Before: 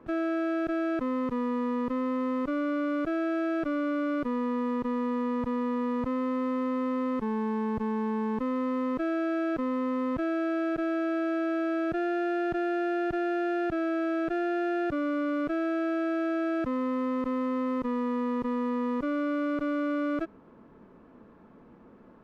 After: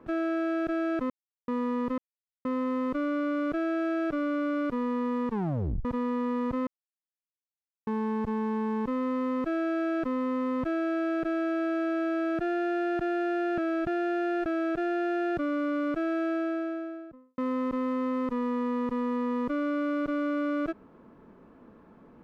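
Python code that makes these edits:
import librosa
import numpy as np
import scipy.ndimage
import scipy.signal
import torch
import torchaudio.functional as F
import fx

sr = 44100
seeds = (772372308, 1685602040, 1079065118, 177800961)

y = fx.studio_fade_out(x, sr, start_s=15.76, length_s=1.15)
y = fx.edit(y, sr, fx.silence(start_s=1.1, length_s=0.38),
    fx.insert_silence(at_s=1.98, length_s=0.47),
    fx.tape_stop(start_s=4.81, length_s=0.57),
    fx.silence(start_s=6.2, length_s=1.2),
    fx.reverse_span(start_s=13.11, length_s=0.88), tone=tone)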